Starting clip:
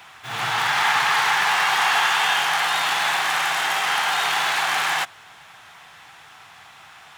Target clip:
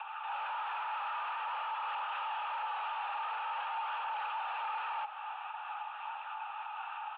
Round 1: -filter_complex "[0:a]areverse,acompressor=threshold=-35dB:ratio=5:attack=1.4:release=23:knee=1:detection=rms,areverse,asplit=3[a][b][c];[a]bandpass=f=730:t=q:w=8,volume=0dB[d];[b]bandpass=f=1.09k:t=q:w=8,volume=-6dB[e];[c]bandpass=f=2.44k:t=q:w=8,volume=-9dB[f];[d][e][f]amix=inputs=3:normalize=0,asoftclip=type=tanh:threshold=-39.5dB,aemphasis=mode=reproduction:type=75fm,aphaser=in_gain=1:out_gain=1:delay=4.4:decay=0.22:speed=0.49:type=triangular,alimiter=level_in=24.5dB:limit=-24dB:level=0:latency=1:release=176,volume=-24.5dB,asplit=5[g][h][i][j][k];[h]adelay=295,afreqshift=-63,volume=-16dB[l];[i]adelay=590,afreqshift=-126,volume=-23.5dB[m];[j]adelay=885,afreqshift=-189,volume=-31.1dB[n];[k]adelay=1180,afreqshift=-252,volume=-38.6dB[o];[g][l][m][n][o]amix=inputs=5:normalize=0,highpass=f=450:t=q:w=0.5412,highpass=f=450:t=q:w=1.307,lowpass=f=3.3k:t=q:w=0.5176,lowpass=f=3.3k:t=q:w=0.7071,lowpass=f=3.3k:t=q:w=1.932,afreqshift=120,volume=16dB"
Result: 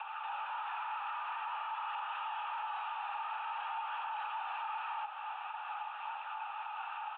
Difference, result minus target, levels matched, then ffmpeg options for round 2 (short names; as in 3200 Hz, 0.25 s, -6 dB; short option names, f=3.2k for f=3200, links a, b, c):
compressor: peak gain reduction +9 dB
-filter_complex "[0:a]areverse,acompressor=threshold=-24dB:ratio=5:attack=1.4:release=23:knee=1:detection=rms,areverse,asplit=3[a][b][c];[a]bandpass=f=730:t=q:w=8,volume=0dB[d];[b]bandpass=f=1.09k:t=q:w=8,volume=-6dB[e];[c]bandpass=f=2.44k:t=q:w=8,volume=-9dB[f];[d][e][f]amix=inputs=3:normalize=0,asoftclip=type=tanh:threshold=-39.5dB,aemphasis=mode=reproduction:type=75fm,aphaser=in_gain=1:out_gain=1:delay=4.4:decay=0.22:speed=0.49:type=triangular,alimiter=level_in=24.5dB:limit=-24dB:level=0:latency=1:release=176,volume=-24.5dB,asplit=5[g][h][i][j][k];[h]adelay=295,afreqshift=-63,volume=-16dB[l];[i]adelay=590,afreqshift=-126,volume=-23.5dB[m];[j]adelay=885,afreqshift=-189,volume=-31.1dB[n];[k]adelay=1180,afreqshift=-252,volume=-38.6dB[o];[g][l][m][n][o]amix=inputs=5:normalize=0,highpass=f=450:t=q:w=0.5412,highpass=f=450:t=q:w=1.307,lowpass=f=3.3k:t=q:w=0.5176,lowpass=f=3.3k:t=q:w=0.7071,lowpass=f=3.3k:t=q:w=1.932,afreqshift=120,volume=16dB"